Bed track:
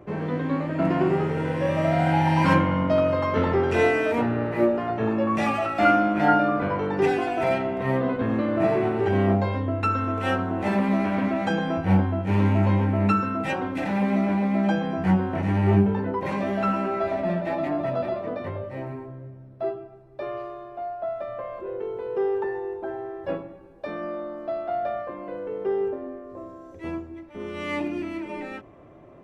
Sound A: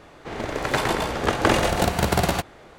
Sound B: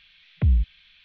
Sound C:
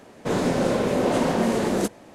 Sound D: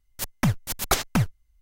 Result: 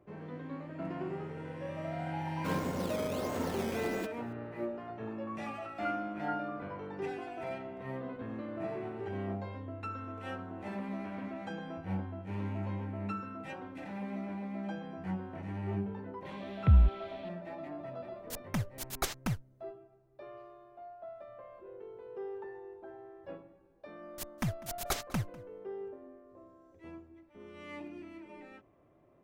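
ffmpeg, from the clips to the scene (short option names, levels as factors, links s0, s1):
-filter_complex "[4:a]asplit=2[s0][s1];[0:a]volume=0.15[s2];[3:a]acrusher=samples=11:mix=1:aa=0.000001:lfo=1:lforange=11:lforate=1.5[s3];[s1]asplit=2[s4][s5];[s5]adelay=198.3,volume=0.1,highshelf=f=4000:g=-4.46[s6];[s4][s6]amix=inputs=2:normalize=0[s7];[s3]atrim=end=2.14,asetpts=PTS-STARTPTS,volume=0.178,afade=t=in:d=0.004:c=hsin,afade=t=out:st=2.136:d=0.004:c=hsin,adelay=2190[s8];[2:a]atrim=end=1.04,asetpts=PTS-STARTPTS,volume=0.75,afade=t=in:d=0.004:c=hsin,afade=t=out:st=1.036:d=0.004:c=hsin,adelay=16250[s9];[s0]atrim=end=1.61,asetpts=PTS-STARTPTS,volume=0.266,afade=t=in:d=0.004:c=hsin,afade=t=out:st=1.606:d=0.004:c=hsin,adelay=18110[s10];[s7]atrim=end=1.61,asetpts=PTS-STARTPTS,volume=0.266,afade=t=in:d=0.004:c=hsin,afade=t=out:st=1.606:d=0.004:c=hsin,adelay=23990[s11];[s2][s8][s9][s10][s11]amix=inputs=5:normalize=0"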